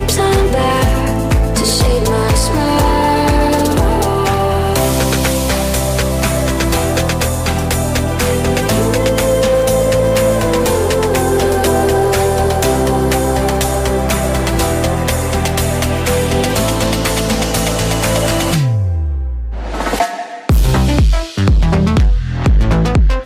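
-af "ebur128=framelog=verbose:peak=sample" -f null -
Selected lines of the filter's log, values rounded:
Integrated loudness:
  I:         -14.1 LUFS
  Threshold: -24.1 LUFS
Loudness range:
  LRA:         2.5 LU
  Threshold: -34.2 LUFS
  LRA low:   -15.6 LUFS
  LRA high:  -13.1 LUFS
Sample peak:
  Peak:       -6.3 dBFS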